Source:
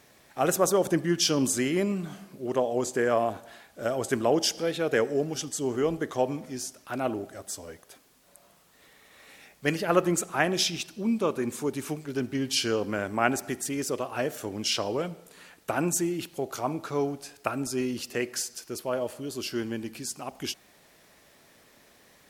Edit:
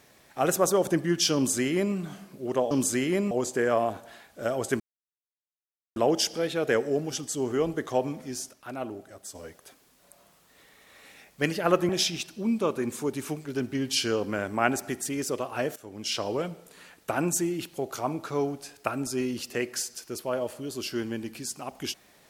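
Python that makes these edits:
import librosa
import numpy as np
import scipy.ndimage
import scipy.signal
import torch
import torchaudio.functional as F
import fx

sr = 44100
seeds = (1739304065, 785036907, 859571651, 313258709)

y = fx.edit(x, sr, fx.duplicate(start_s=1.35, length_s=0.6, to_s=2.71),
    fx.insert_silence(at_s=4.2, length_s=1.16),
    fx.clip_gain(start_s=6.77, length_s=0.82, db=-5.5),
    fx.cut(start_s=10.13, length_s=0.36),
    fx.fade_in_from(start_s=14.36, length_s=0.54, floor_db=-15.5), tone=tone)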